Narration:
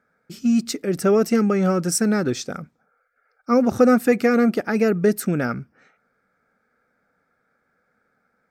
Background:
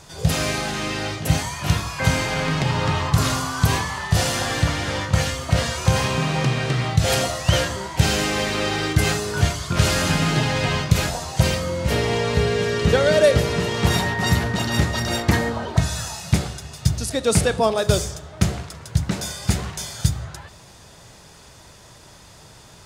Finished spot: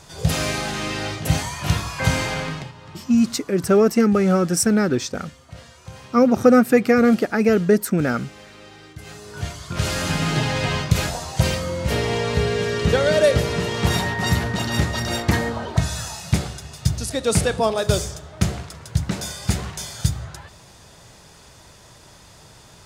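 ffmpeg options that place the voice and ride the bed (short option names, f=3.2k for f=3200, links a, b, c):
-filter_complex "[0:a]adelay=2650,volume=2dB[a];[1:a]volume=19.5dB,afade=t=out:st=2.27:d=0.45:silence=0.0944061,afade=t=in:st=9.04:d=1.35:silence=0.1[b];[a][b]amix=inputs=2:normalize=0"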